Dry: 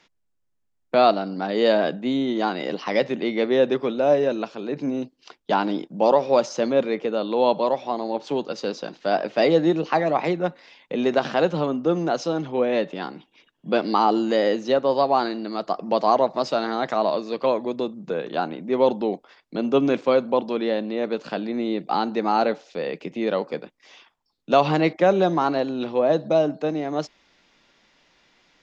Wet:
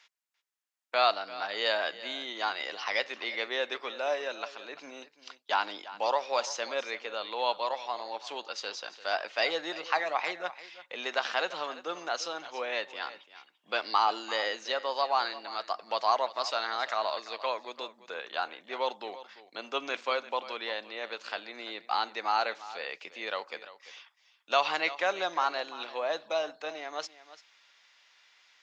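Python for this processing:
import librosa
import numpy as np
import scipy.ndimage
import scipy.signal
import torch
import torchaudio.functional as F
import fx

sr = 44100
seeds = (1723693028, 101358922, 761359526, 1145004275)

y = scipy.signal.sosfilt(scipy.signal.butter(2, 1200.0, 'highpass', fs=sr, output='sos'), x)
y = y + 10.0 ** (-16.0 / 20.0) * np.pad(y, (int(342 * sr / 1000.0), 0))[:len(y)]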